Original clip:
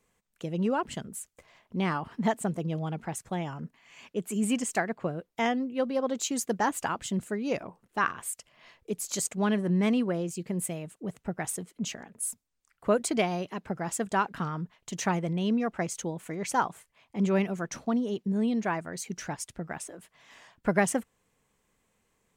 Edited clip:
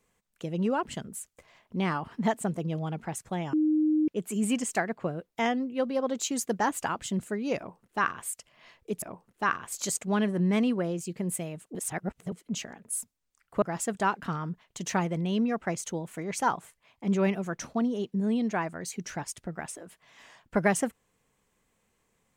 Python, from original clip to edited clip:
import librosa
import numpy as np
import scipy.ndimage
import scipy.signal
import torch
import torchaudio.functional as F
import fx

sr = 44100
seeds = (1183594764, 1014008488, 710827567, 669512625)

y = fx.edit(x, sr, fx.bleep(start_s=3.53, length_s=0.55, hz=308.0, db=-21.0),
    fx.duplicate(start_s=7.57, length_s=0.7, to_s=9.02),
    fx.reverse_span(start_s=11.05, length_s=0.57),
    fx.cut(start_s=12.92, length_s=0.82), tone=tone)